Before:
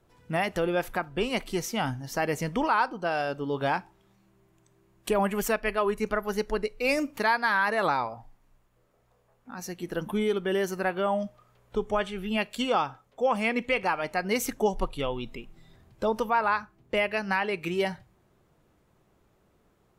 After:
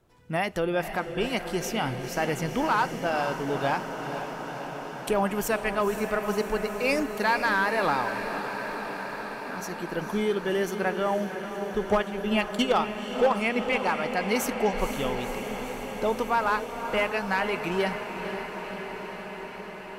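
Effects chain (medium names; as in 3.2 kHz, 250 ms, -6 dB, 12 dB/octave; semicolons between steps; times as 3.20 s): 11.85–13.33 s: transient shaper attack +7 dB, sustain -9 dB; one-sided clip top -17 dBFS, bottom -15.5 dBFS; echo that smears into a reverb 499 ms, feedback 79%, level -9 dB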